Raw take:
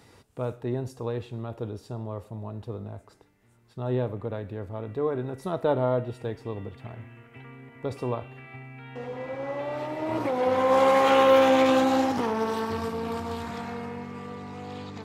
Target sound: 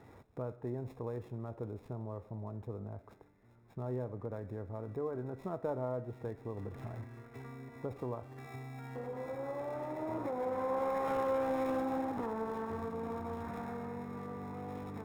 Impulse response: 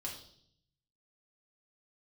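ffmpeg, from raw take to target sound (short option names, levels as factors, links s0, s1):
-filter_complex "[0:a]asettb=1/sr,asplit=3[s0][s1][s2];[s0]atrim=end=6.574[s3];[s1]atrim=start=6.57:end=7.04,asetpts=PTS-STARTPTS,afade=t=in:d=0.004:c=qsin,afade=t=out:st=0.466:d=0.004:c=qsin,aeval=exprs='val(0)+0.5*0.00708*sgn(val(0))':c=same[s4];[s2]atrim=start=7.036[s5];[s3][s4]acrossfade=d=0.004:c1=hsin:c2=qsin[s6];[s6][s5]acrossfade=d=0.004:c1=qsin:c2=hsin,acrossover=split=2000[s7][s8];[s8]acrusher=samples=29:mix=1:aa=0.000001[s9];[s7][s9]amix=inputs=2:normalize=0,acompressor=threshold=0.01:ratio=2,volume=0.841"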